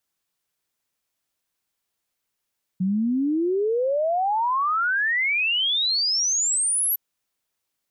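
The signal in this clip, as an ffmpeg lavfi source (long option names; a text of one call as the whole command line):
ffmpeg -f lavfi -i "aevalsrc='0.106*clip(min(t,4.16-t)/0.01,0,1)*sin(2*PI*180*4.16/log(12000/180)*(exp(log(12000/180)*t/4.16)-1))':duration=4.16:sample_rate=44100" out.wav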